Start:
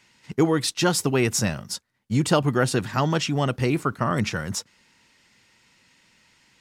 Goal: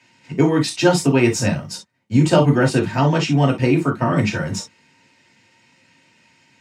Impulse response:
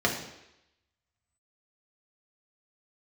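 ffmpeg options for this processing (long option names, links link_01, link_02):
-filter_complex "[1:a]atrim=start_sample=2205,atrim=end_sample=3969,asetrate=57330,aresample=44100[link_01];[0:a][link_01]afir=irnorm=-1:irlink=0,volume=-6dB"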